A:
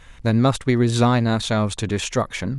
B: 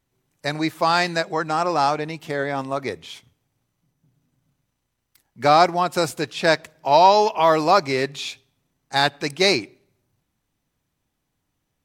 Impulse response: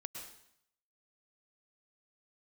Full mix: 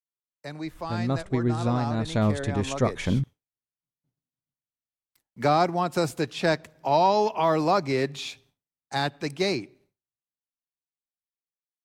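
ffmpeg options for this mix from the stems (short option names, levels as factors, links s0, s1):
-filter_complex "[0:a]adelay=650,volume=0.398[s0];[1:a]agate=range=0.0224:threshold=0.00316:ratio=3:detection=peak,lowshelf=f=340:g=-9.5,acrossover=split=270[s1][s2];[s2]acompressor=threshold=0.00562:ratio=1.5[s3];[s1][s3]amix=inputs=2:normalize=0,volume=0.596,asplit=2[s4][s5];[s5]apad=whole_len=142775[s6];[s0][s6]sidechaincompress=threshold=0.0158:ratio=8:attack=30:release=418[s7];[s7][s4]amix=inputs=2:normalize=0,tiltshelf=f=800:g=4,dynaudnorm=f=450:g=13:m=3.16"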